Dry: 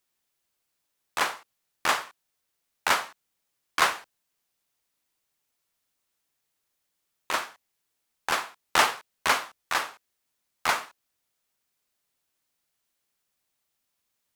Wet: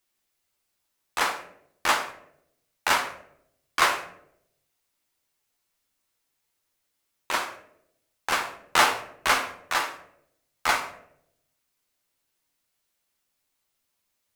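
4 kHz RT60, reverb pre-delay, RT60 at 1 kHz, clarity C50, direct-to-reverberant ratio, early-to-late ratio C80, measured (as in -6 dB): 0.40 s, 8 ms, 0.60 s, 10.5 dB, 2.5 dB, 13.5 dB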